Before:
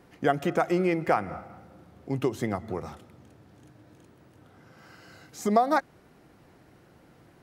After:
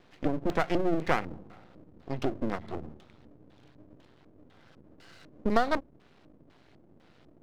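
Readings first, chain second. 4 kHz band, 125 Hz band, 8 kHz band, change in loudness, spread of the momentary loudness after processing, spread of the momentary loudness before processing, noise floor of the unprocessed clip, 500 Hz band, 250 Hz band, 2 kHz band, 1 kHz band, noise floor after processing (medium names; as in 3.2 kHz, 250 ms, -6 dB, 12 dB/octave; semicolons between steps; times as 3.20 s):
+0.5 dB, -4.0 dB, -9.5 dB, -3.5 dB, 14 LU, 14 LU, -58 dBFS, -4.5 dB, -2.5 dB, -2.0 dB, -5.0 dB, -60 dBFS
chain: LFO low-pass square 2 Hz 290–3800 Hz; half-wave rectifier; hum notches 60/120/180 Hz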